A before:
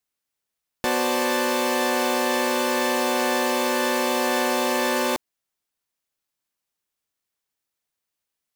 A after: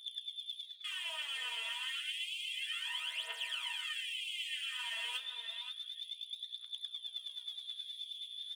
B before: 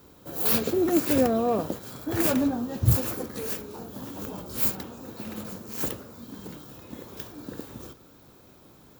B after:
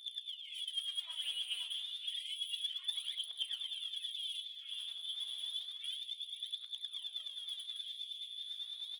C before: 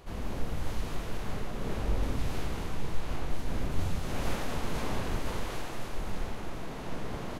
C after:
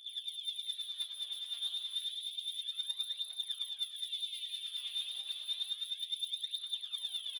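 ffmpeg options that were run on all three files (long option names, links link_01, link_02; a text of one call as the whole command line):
ffmpeg -i in.wav -filter_complex "[0:a]afftdn=noise_reduction=24:noise_floor=-33,acrusher=bits=7:mode=log:mix=0:aa=0.000001,aeval=exprs='val(0)+0.00794*(sin(2*PI*60*n/s)+sin(2*PI*2*60*n/s)/2+sin(2*PI*3*60*n/s)/3+sin(2*PI*4*60*n/s)/4+sin(2*PI*5*60*n/s)/5)':channel_layout=same,areverse,acompressor=threshold=-33dB:ratio=16,areverse,lowpass=frequency=3100:width_type=q:width=0.5098,lowpass=frequency=3100:width_type=q:width=0.6013,lowpass=frequency=3100:width_type=q:width=0.9,lowpass=frequency=3100:width_type=q:width=2.563,afreqshift=-3600,asoftclip=type=tanh:threshold=-36.5dB,aphaser=in_gain=1:out_gain=1:delay=4.5:decay=0.8:speed=0.3:type=triangular,asplit=2[link_01][link_02];[link_02]adelay=525,lowpass=frequency=2600:poles=1,volume=-7dB,asplit=2[link_03][link_04];[link_04]adelay=525,lowpass=frequency=2600:poles=1,volume=0.18,asplit=2[link_05][link_06];[link_06]adelay=525,lowpass=frequency=2600:poles=1,volume=0.18[link_07];[link_01][link_03][link_05][link_07]amix=inputs=4:normalize=0,flanger=delay=6.1:depth=8:regen=-85:speed=0.87:shape=triangular,afftfilt=real='re*gte(b*sr/1024,390*pow(2100/390,0.5+0.5*sin(2*PI*0.52*pts/sr)))':imag='im*gte(b*sr/1024,390*pow(2100/390,0.5+0.5*sin(2*PI*0.52*pts/sr)))':win_size=1024:overlap=0.75" out.wav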